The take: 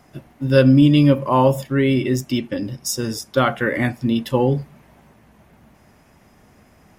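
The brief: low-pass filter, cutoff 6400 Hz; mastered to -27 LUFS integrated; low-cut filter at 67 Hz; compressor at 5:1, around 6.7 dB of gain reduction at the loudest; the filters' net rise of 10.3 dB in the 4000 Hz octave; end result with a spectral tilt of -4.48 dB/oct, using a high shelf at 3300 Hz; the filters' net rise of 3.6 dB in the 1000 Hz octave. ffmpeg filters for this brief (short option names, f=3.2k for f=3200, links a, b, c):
-af "highpass=67,lowpass=6.4k,equalizer=f=1k:t=o:g=3,highshelf=f=3.3k:g=8.5,equalizer=f=4k:t=o:g=8.5,acompressor=threshold=-15dB:ratio=5,volume=-6.5dB"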